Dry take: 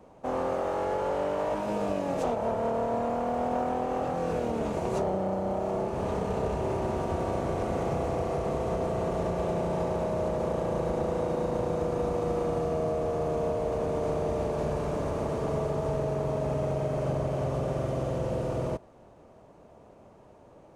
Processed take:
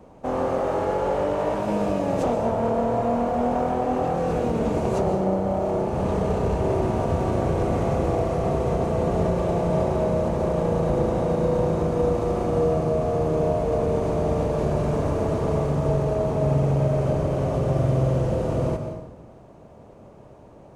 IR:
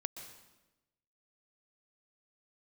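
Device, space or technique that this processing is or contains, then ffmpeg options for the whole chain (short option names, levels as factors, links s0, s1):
bathroom: -filter_complex "[0:a]lowshelf=f=290:g=5.5[s0];[1:a]atrim=start_sample=2205[s1];[s0][s1]afir=irnorm=-1:irlink=0,volume=1.78"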